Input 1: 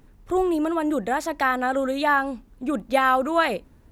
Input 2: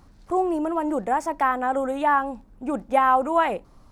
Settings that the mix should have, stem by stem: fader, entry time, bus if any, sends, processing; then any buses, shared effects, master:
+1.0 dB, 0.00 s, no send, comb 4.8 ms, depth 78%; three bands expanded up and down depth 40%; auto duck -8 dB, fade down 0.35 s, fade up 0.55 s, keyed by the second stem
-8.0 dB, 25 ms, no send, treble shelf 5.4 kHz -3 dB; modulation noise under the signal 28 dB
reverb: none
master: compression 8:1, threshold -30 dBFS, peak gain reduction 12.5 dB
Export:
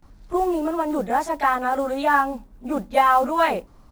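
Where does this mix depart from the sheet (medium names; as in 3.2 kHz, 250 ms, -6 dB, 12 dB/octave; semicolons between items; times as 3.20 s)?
stem 2 -8.0 dB -> +1.0 dB; master: missing compression 8:1, threshold -30 dBFS, peak gain reduction 12.5 dB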